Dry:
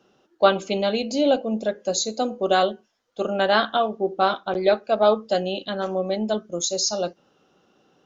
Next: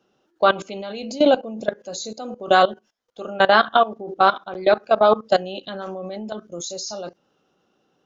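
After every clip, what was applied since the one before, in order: dynamic bell 1.2 kHz, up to +6 dB, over -33 dBFS, Q 1.1; level held to a coarse grid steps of 18 dB; trim +5 dB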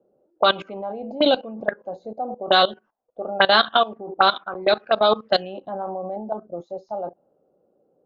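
touch-sensitive low-pass 550–3900 Hz up, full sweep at -13.5 dBFS; trim -3 dB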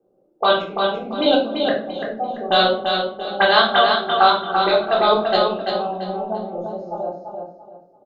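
on a send: feedback delay 339 ms, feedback 29%, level -5 dB; on the sum: simulated room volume 480 m³, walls furnished, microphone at 3.7 m; trim -4 dB

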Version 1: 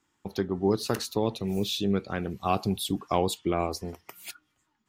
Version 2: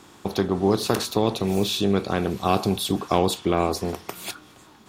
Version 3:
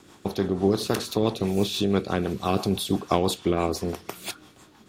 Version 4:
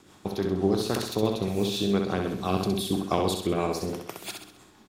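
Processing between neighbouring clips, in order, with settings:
spectral levelling over time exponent 0.6; trim +2.5 dB
rotary cabinet horn 6 Hz
feedback delay 65 ms, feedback 46%, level -5 dB; trim -3.5 dB

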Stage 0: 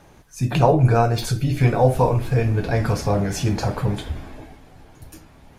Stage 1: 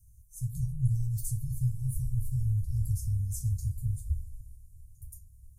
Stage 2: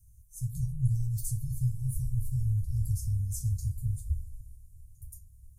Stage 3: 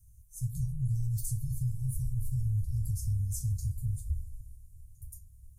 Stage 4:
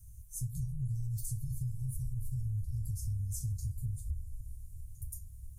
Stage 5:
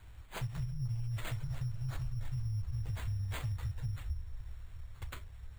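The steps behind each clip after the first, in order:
inverse Chebyshev band-stop 300–3000 Hz, stop band 60 dB; trim -1 dB
dynamic bell 4.1 kHz, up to +3 dB, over -57 dBFS, Q 0.84
peak limiter -23.5 dBFS, peak gain reduction 7.5 dB
compression 2.5:1, threshold -44 dBFS, peak gain reduction 11.5 dB; trim +6 dB
careless resampling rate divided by 8×, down none, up hold; trim -1 dB

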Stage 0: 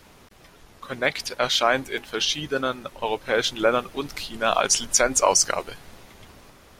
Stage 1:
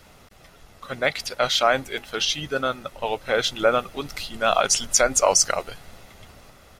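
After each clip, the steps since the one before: comb 1.5 ms, depth 31%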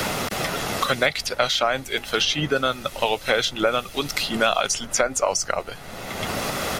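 three bands compressed up and down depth 100%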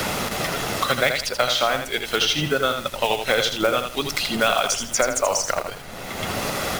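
block-companded coder 5-bit; bit-crushed delay 81 ms, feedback 35%, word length 6-bit, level -6 dB

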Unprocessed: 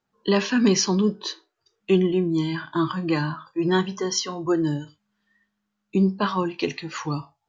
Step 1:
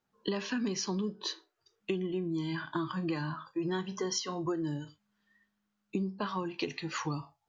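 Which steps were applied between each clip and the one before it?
compression 10:1, threshold -27 dBFS, peak gain reduction 14 dB; trim -3 dB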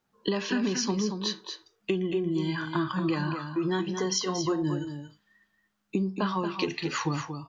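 delay 230 ms -7.5 dB; trim +5 dB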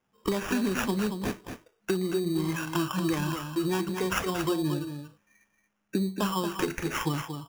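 sample-rate reducer 4.2 kHz, jitter 0%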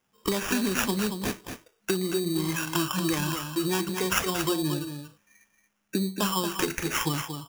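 treble shelf 2.5 kHz +8.5 dB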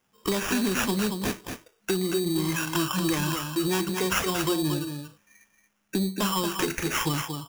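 saturation -19.5 dBFS, distortion -17 dB; trim +2.5 dB

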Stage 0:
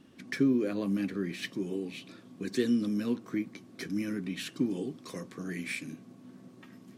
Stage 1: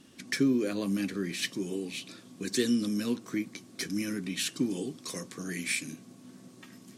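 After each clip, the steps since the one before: peaking EQ 8.2 kHz +12.5 dB 2.3 oct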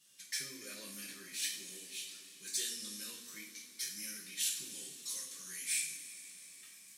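pre-emphasis filter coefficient 0.97; two-slope reverb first 0.47 s, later 4.7 s, from -18 dB, DRR -6 dB; trim -5.5 dB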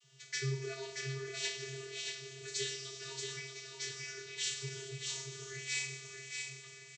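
feedback delay 629 ms, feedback 39%, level -5 dB; vocoder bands 32, square 134 Hz; trim +2.5 dB

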